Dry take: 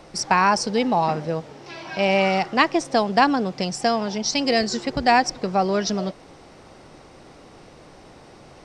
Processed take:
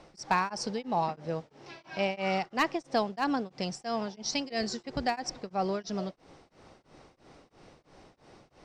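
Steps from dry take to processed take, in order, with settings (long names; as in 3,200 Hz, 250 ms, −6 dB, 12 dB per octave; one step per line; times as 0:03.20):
low-pass filter 8,400 Hz 12 dB per octave
gain into a clipping stage and back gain 7.5 dB
tremolo along a rectified sine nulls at 3 Hz
level −7.5 dB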